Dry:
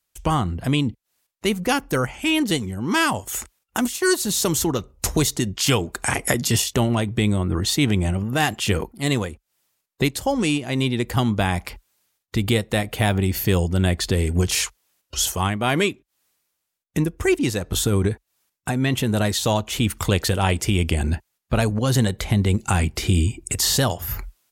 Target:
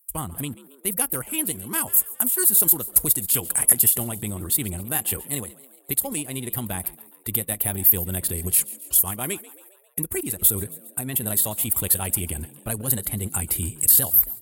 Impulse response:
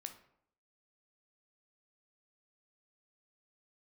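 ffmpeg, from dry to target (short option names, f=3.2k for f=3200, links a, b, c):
-filter_complex "[0:a]asplit=6[a][b][c][d][e][f];[b]adelay=230,afreqshift=65,volume=-19dB[g];[c]adelay=460,afreqshift=130,volume=-24dB[h];[d]adelay=690,afreqshift=195,volume=-29.1dB[i];[e]adelay=920,afreqshift=260,volume=-34.1dB[j];[f]adelay=1150,afreqshift=325,volume=-39.1dB[k];[a][g][h][i][j][k]amix=inputs=6:normalize=0,aexciter=amount=11.4:drive=9.7:freq=9k,atempo=1.7,volume=-10dB"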